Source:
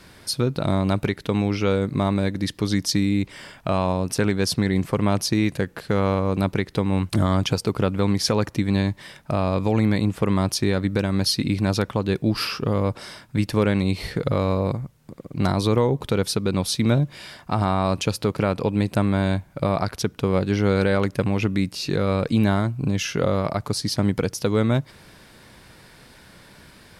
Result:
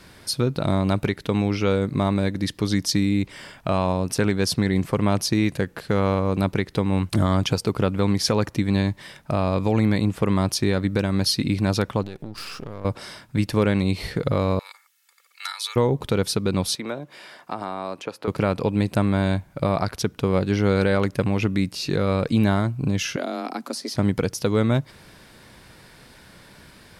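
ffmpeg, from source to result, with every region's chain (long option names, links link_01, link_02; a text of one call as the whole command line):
ffmpeg -i in.wav -filter_complex "[0:a]asettb=1/sr,asplit=3[link_01][link_02][link_03];[link_01]atrim=end=12.034[link_04];[link_02]atrim=start=12.03:end=12.85,asetpts=PTS-STARTPTS,afade=type=in:duration=0.004:curve=qsin,afade=type=out:start_time=0.816:duration=0.004:curve=qsin,aeval=exprs='if(lt(val(0),0),0.251*val(0),val(0))':channel_layout=same,acompressor=threshold=-29dB:ratio=10:attack=3.2:release=140:knee=1:detection=peak[link_05];[link_03]atrim=start=12.846[link_06];[link_04][link_05]acrossfade=duration=0.004:curve1=hsin:curve2=qsin[link_07];[link_07][link_06]acrossfade=duration=0.004:curve1=qsin:curve2=hsin,asettb=1/sr,asplit=3[link_08][link_09][link_10];[link_08]atrim=end=14.594[link_11];[link_09]atrim=start=14.59:end=15.76,asetpts=PTS-STARTPTS,afade=type=in:duration=0.004:curve=qsin,afade=type=out:start_time=1.166:duration=0.004:curve=qsin,highpass=frequency=1500:width=0.5412,highpass=frequency=1500:width=1.3066,highshelf=frequency=9500:gain=4,aecho=1:1:2.3:0.79,atrim=end_sample=51597[link_12];[link_10]atrim=start=15.756[link_13];[link_11][link_12]acrossfade=duration=0.004:curve1=hsin:curve2=qsin[link_14];[link_14][link_13]acrossfade=duration=0.004:curve1=qsin:curve2=hsin,asettb=1/sr,asplit=3[link_15][link_16][link_17];[link_15]atrim=end=16.754[link_18];[link_16]atrim=start=16.75:end=18.28,asetpts=PTS-STARTPTS,afade=type=in:duration=0.004:curve=qsin,afade=type=out:start_time=1.526:duration=0.004:curve=qsin,highpass=330,acrossover=split=440|2200[link_19][link_20][link_21];[link_19]acompressor=threshold=-33dB:ratio=4[link_22];[link_20]acompressor=threshold=-29dB:ratio=4[link_23];[link_21]acompressor=threshold=-48dB:ratio=4[link_24];[link_22][link_23][link_24]amix=inputs=3:normalize=0[link_25];[link_17]atrim=start=18.276[link_26];[link_18][link_25]acrossfade=duration=0.004:curve1=hsin:curve2=qsin[link_27];[link_27][link_26]acrossfade=duration=0.004:curve1=qsin:curve2=hsin,asettb=1/sr,asplit=3[link_28][link_29][link_30];[link_28]atrim=end=23.164[link_31];[link_29]atrim=start=23.16:end=23.95,asetpts=PTS-STARTPTS,afade=type=in:duration=0.004:curve=qsin,afade=type=out:start_time=0.786:duration=0.004:curve=qsin,acrossover=split=410|2400[link_32][link_33][link_34];[link_32]acompressor=threshold=-31dB:ratio=4[link_35];[link_33]acompressor=threshold=-30dB:ratio=4[link_36];[link_34]acompressor=threshold=-32dB:ratio=4[link_37];[link_35][link_36][link_37]amix=inputs=3:normalize=0,afreqshift=120[link_38];[link_30]atrim=start=23.946[link_39];[link_31][link_38]acrossfade=duration=0.004:curve1=hsin:curve2=qsin[link_40];[link_40][link_39]acrossfade=duration=0.004:curve1=qsin:curve2=hsin" out.wav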